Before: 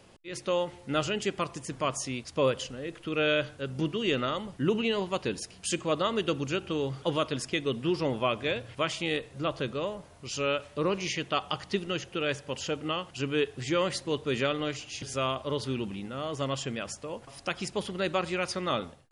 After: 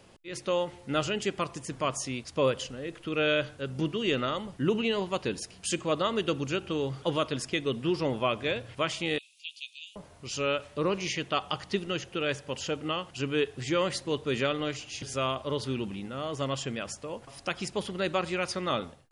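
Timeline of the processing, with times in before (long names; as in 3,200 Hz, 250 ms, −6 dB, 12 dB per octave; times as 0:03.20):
0:09.18–0:09.96: Butterworth high-pass 2,400 Hz 96 dB per octave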